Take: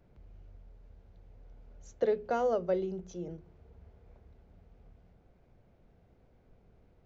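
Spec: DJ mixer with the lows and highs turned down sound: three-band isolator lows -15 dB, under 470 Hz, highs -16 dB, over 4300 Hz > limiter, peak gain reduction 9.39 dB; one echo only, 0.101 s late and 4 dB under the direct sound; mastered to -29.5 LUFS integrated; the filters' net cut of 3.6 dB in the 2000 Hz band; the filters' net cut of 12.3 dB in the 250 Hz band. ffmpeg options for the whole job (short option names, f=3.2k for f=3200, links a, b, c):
-filter_complex "[0:a]acrossover=split=470 4300:gain=0.178 1 0.158[a][b][c];[a][b][c]amix=inputs=3:normalize=0,equalizer=f=250:t=o:g=-3.5,equalizer=f=2k:t=o:g=-5,aecho=1:1:101:0.631,volume=12.5dB,alimiter=limit=-19dB:level=0:latency=1"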